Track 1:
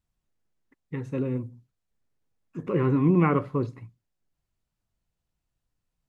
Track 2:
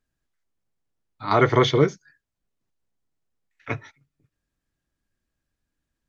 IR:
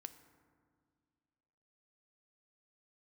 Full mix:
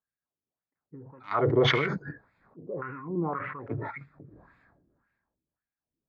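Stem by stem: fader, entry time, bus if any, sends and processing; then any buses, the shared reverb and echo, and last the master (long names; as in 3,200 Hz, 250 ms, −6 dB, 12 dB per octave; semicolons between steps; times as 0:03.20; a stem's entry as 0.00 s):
−10.5 dB, 0.00 s, no send, low-pass on a step sequencer 3.9 Hz 580–1,700 Hz; automatic ducking −13 dB, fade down 0.30 s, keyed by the second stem
−3.0 dB, 0.00 s, no send, adaptive Wiener filter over 15 samples; high-shelf EQ 4,100 Hz +4.5 dB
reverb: not used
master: bass and treble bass +13 dB, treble −7 dB; auto-filter band-pass sine 1.8 Hz 340–2,500 Hz; level that may fall only so fast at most 34 dB per second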